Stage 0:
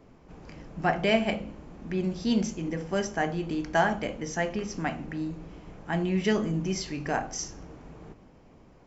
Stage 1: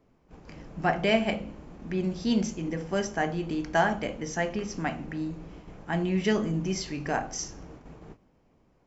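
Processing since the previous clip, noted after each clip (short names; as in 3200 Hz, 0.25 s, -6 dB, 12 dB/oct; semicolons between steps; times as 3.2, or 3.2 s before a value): gate -46 dBFS, range -10 dB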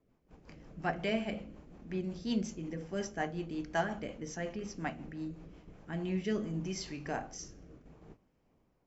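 rotary speaker horn 5.5 Hz, later 0.65 Hz, at 5.54; gain -6.5 dB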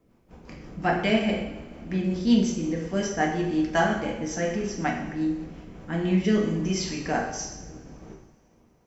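two-slope reverb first 0.76 s, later 2.5 s, DRR 0 dB; gain +8 dB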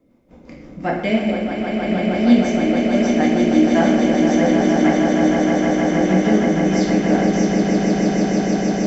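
small resonant body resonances 270/540/2100/3600 Hz, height 11 dB, ringing for 30 ms; on a send: swelling echo 0.156 s, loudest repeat 8, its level -6.5 dB; on the sum: gain -1.5 dB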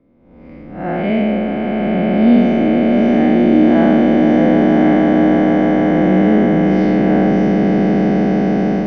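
time blur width 0.168 s; air absorption 350 m; gain +6 dB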